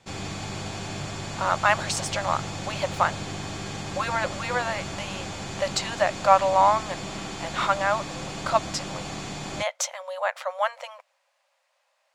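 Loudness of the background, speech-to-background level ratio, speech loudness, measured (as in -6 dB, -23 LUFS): -34.0 LUFS, 8.0 dB, -26.0 LUFS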